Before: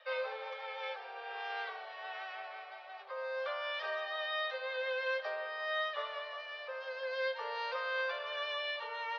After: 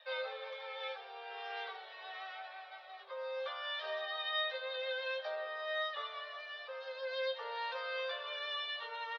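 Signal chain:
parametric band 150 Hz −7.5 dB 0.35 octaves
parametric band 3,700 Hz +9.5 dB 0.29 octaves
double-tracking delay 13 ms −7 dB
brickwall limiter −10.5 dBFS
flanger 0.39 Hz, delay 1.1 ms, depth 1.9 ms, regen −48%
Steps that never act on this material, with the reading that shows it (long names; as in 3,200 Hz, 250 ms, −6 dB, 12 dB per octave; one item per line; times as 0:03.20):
parametric band 150 Hz: nothing at its input below 380 Hz
brickwall limiter −10.5 dBFS: peak of its input −21.5 dBFS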